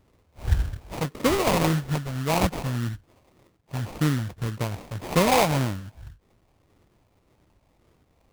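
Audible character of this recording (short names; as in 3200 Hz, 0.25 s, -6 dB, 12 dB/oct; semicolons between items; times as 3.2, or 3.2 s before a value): phasing stages 12, 1.8 Hz, lowest notch 340–1200 Hz; aliases and images of a low sample rate 1600 Hz, jitter 20%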